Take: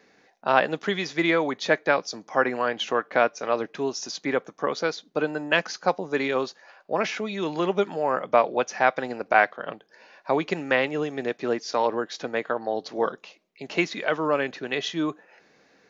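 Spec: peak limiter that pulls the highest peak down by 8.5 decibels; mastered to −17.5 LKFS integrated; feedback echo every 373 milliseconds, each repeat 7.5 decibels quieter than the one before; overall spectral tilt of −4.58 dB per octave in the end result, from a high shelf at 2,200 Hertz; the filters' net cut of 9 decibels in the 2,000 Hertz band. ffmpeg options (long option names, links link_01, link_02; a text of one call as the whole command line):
ffmpeg -i in.wav -af "equalizer=frequency=2000:width_type=o:gain=-8,highshelf=frequency=2200:gain=-8,alimiter=limit=-16.5dB:level=0:latency=1,aecho=1:1:373|746|1119|1492|1865:0.422|0.177|0.0744|0.0312|0.0131,volume=12dB" out.wav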